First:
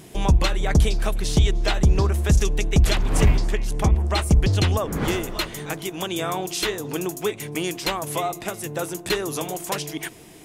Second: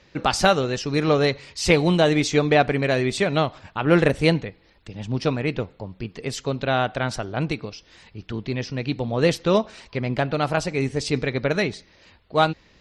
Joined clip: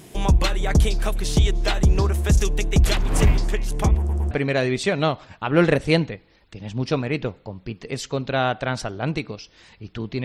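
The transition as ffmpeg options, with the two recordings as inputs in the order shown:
ffmpeg -i cue0.wav -i cue1.wav -filter_complex "[0:a]apad=whole_dur=10.24,atrim=end=10.24,asplit=3[link_01][link_02][link_03];[link_01]atrim=end=4.092[link_04];[link_02]atrim=start=3.978:end=4.092[link_05];[link_03]atrim=start=3.978:end=4.092[link_06];[1:a]atrim=start=2.648:end=8.58[link_07];[link_04][link_05]acrossfade=duration=0.004:curve1=hsin:curve2=hsin[link_08];[link_08][link_06]acrossfade=duration=0.004:curve1=hsin:curve2=hsin[link_09];[link_09][link_07]acrossfade=duration=0.004:curve1=hsin:curve2=hsin" out.wav

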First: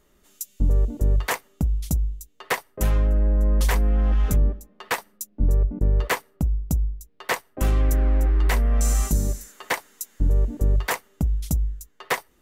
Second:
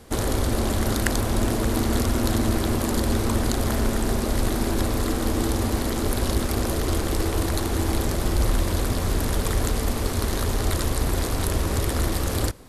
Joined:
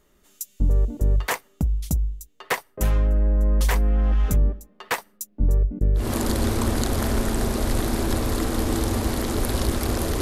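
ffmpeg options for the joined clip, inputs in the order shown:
ffmpeg -i cue0.wav -i cue1.wav -filter_complex "[0:a]asettb=1/sr,asplit=3[link_01][link_02][link_03];[link_01]atrim=end=5.584[link_04];[link_02]atrim=start=5.58:end=6.12,asetpts=PTS-STARTPTS,afade=type=in:duration=0.004:curve=qsin,afade=type=out:start_time=0.536:duration=0.004:curve=qsin,equalizer=frequency=970:width_type=o:width=0.62:gain=-13[link_05];[link_03]atrim=start=6.116[link_06];[link_04][link_05]acrossfade=duration=0.004:curve1=hsin:curve2=qsin[link_07];[link_07][link_06]acrossfade=duration=0.004:curve1=qsin:curve2=hsin,apad=whole_dur=10.21,atrim=end=10.21,atrim=end=6.12,asetpts=PTS-STARTPTS[link_08];[1:a]atrim=start=2.62:end=6.89,asetpts=PTS-STARTPTS[link_09];[link_08][link_09]acrossfade=duration=0.18:curve1=tri:curve2=tri" out.wav

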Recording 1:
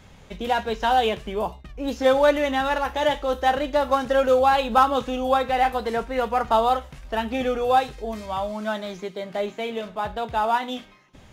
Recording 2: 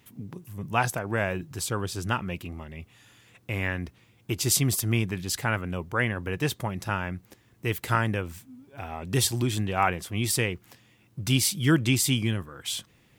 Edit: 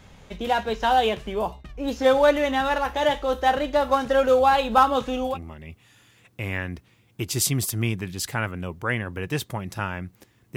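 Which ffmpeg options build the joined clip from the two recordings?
ffmpeg -i cue0.wav -i cue1.wav -filter_complex "[0:a]apad=whole_dur=10.56,atrim=end=10.56,atrim=end=5.38,asetpts=PTS-STARTPTS[link_01];[1:a]atrim=start=2.34:end=7.66,asetpts=PTS-STARTPTS[link_02];[link_01][link_02]acrossfade=duration=0.14:curve1=tri:curve2=tri" out.wav

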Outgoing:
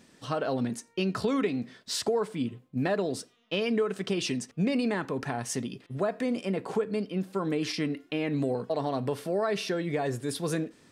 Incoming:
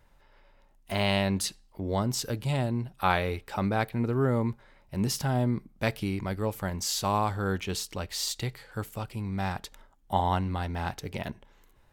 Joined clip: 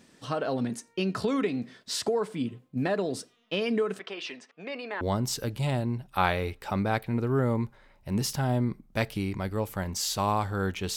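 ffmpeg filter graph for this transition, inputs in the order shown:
ffmpeg -i cue0.wav -i cue1.wav -filter_complex "[0:a]asplit=3[link_01][link_02][link_03];[link_01]afade=type=out:start_time=3.98:duration=0.02[link_04];[link_02]highpass=650,lowpass=3100,afade=type=in:start_time=3.98:duration=0.02,afade=type=out:start_time=5.01:duration=0.02[link_05];[link_03]afade=type=in:start_time=5.01:duration=0.02[link_06];[link_04][link_05][link_06]amix=inputs=3:normalize=0,apad=whole_dur=10.96,atrim=end=10.96,atrim=end=5.012[link_07];[1:a]atrim=start=1.868:end=7.82[link_08];[link_07][link_08]acrossfade=duration=0.004:curve1=hsin:curve2=hsin" out.wav

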